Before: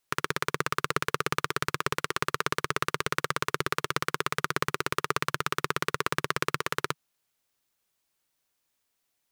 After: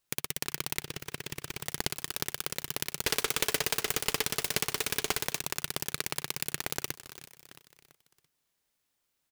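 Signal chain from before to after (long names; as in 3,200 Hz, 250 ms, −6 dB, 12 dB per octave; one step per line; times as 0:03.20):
repeating echo 335 ms, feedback 46%, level −18 dB
downward compressor, threshold −28 dBFS, peak gain reduction 8 dB
0:00.83–0:01.65: time-frequency box erased 920–3,100 Hz
0:03.05–0:05.38: hollow resonant body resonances 440/920/1,500 Hz, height 16 dB → 12 dB, ringing for 65 ms
short delay modulated by noise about 2,300 Hz, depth 0.46 ms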